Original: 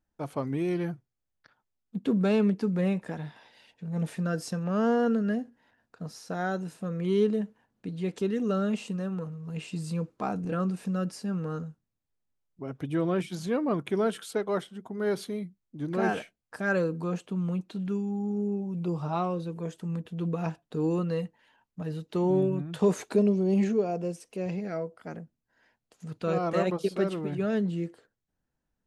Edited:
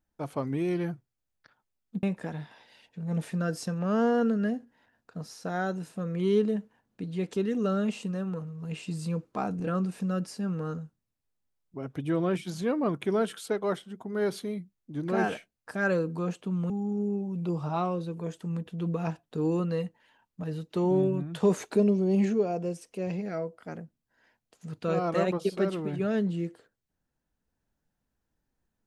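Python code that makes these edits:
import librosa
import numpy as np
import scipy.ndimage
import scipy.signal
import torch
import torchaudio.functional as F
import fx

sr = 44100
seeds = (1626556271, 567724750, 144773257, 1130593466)

y = fx.edit(x, sr, fx.cut(start_s=2.03, length_s=0.85),
    fx.cut(start_s=17.55, length_s=0.54), tone=tone)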